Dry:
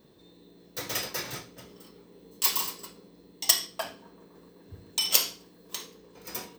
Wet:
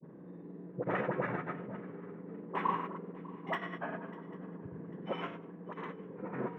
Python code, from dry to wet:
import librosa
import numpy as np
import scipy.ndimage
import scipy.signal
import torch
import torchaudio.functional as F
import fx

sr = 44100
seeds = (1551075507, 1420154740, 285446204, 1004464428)

p1 = scipy.signal.sosfilt(scipy.signal.cheby2(4, 50, 4400.0, 'lowpass', fs=sr, output='sos'), x)
p2 = fx.low_shelf_res(p1, sr, hz=110.0, db=-11.5, q=3.0)
p3 = fx.hum_notches(p2, sr, base_hz=50, count=3)
p4 = fx.dispersion(p3, sr, late='highs', ms=69.0, hz=620.0)
p5 = fx.granulator(p4, sr, seeds[0], grain_ms=100.0, per_s=20.0, spray_ms=100.0, spread_st=0)
p6 = p5 + fx.echo_swing(p5, sr, ms=796, ratio=3, feedback_pct=34, wet_db=-21, dry=0)
y = F.gain(torch.from_numpy(p6), 6.0).numpy()